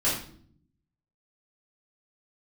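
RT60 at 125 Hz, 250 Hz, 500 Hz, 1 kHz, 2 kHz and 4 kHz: 1.1, 1.0, 0.65, 0.50, 0.45, 0.45 seconds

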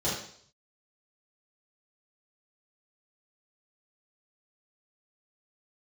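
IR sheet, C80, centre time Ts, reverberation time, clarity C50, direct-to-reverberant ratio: 7.0 dB, 48 ms, 0.60 s, 3.0 dB, −9.5 dB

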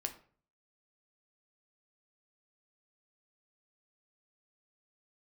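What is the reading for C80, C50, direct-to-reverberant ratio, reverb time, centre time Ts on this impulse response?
17.0 dB, 12.5 dB, 5.5 dB, 0.45 s, 10 ms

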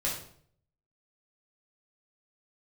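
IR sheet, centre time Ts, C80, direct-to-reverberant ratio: 35 ms, 9.0 dB, −5.5 dB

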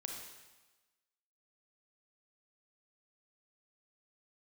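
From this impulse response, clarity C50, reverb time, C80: 2.5 dB, 1.2 s, 4.5 dB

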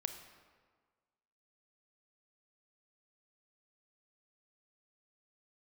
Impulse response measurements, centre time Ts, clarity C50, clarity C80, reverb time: 23 ms, 8.5 dB, 10.0 dB, 1.6 s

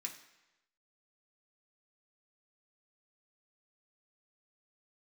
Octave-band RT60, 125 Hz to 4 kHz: 0.95, 0.90, 1.0, 1.0, 1.0, 0.95 seconds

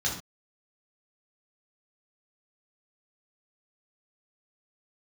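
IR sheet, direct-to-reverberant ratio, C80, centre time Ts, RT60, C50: −4.5 dB, 10.0 dB, 31 ms, non-exponential decay, 5.0 dB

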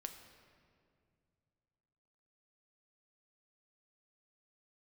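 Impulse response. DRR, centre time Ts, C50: 5.5 dB, 29 ms, 8.0 dB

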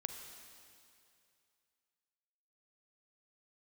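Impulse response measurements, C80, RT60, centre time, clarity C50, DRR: 6.5 dB, 2.5 s, 49 ms, 5.5 dB, 5.5 dB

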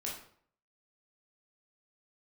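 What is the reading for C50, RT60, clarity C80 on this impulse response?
4.5 dB, 0.55 s, 8.5 dB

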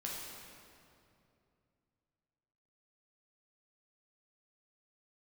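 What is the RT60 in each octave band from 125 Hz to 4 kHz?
3.5, 3.1, 2.8, 2.4, 2.1, 1.8 seconds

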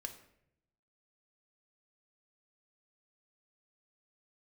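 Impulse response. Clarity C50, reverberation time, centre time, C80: 11.0 dB, 0.75 s, 11 ms, 14.0 dB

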